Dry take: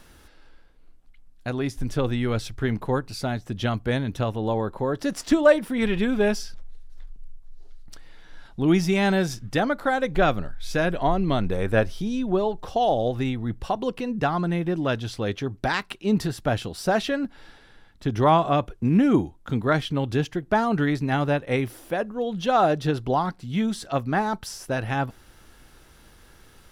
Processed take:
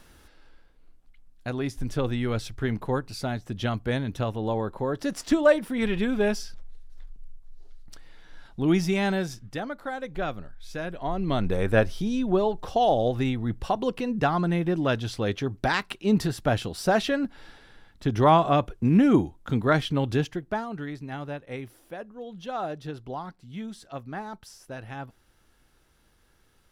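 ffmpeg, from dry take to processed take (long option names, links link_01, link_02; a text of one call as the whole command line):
ffmpeg -i in.wav -af "volume=7.5dB,afade=type=out:start_time=8.86:duration=0.74:silence=0.421697,afade=type=in:start_time=11.01:duration=0.52:silence=0.316228,afade=type=out:start_time=20.1:duration=0.57:silence=0.251189" out.wav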